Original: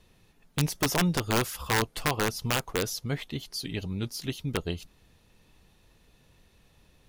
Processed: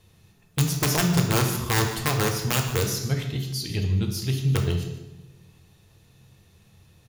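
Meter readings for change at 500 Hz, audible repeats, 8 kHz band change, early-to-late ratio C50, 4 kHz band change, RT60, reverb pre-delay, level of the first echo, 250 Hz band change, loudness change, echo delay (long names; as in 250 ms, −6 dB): +3.0 dB, 1, +5.5 dB, 6.0 dB, +3.5 dB, 1.0 s, 3 ms, −15.0 dB, +4.0 dB, +5.0 dB, 149 ms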